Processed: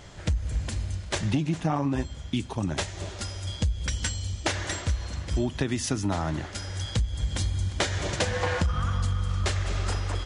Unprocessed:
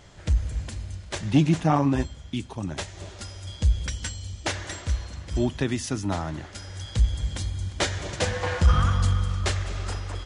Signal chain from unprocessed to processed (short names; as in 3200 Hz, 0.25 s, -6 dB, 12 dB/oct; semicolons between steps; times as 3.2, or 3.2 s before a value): compressor 12:1, threshold -26 dBFS, peak gain reduction 14.5 dB; gain +4 dB